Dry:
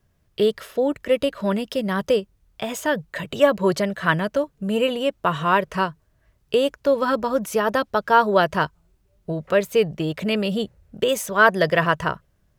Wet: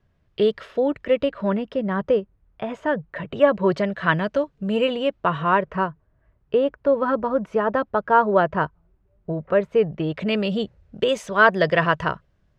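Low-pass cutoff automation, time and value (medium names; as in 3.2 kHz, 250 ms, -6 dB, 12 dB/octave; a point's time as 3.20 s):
0.89 s 3.5 kHz
1.78 s 1.7 kHz
3.11 s 1.7 kHz
4.27 s 4.2 kHz
4.88 s 4.2 kHz
5.81 s 1.6 kHz
9.76 s 1.6 kHz
10.37 s 4.4 kHz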